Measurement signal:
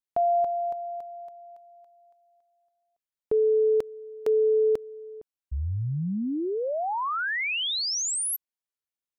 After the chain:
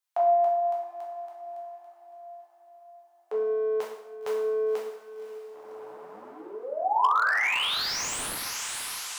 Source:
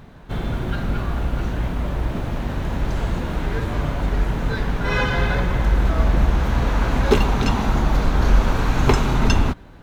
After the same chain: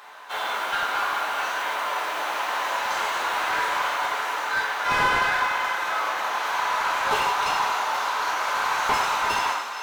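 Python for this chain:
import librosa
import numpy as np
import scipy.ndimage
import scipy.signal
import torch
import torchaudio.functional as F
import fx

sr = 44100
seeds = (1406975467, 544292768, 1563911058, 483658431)

y = fx.octave_divider(x, sr, octaves=1, level_db=0.0)
y = fx.high_shelf(y, sr, hz=2900.0, db=9.5)
y = 10.0 ** (-2.5 / 20.0) * np.tanh(y / 10.0 ** (-2.5 / 20.0))
y = fx.ladder_highpass(y, sr, hz=760.0, resonance_pct=30)
y = fx.tilt_eq(y, sr, slope=-1.5)
y = fx.echo_diffused(y, sr, ms=552, feedback_pct=56, wet_db=-12)
y = fx.rev_plate(y, sr, seeds[0], rt60_s=0.81, hf_ratio=0.85, predelay_ms=0, drr_db=-3.0)
y = fx.rider(y, sr, range_db=4, speed_s=2.0)
y = fx.slew_limit(y, sr, full_power_hz=100.0)
y = y * 10.0 ** (4.5 / 20.0)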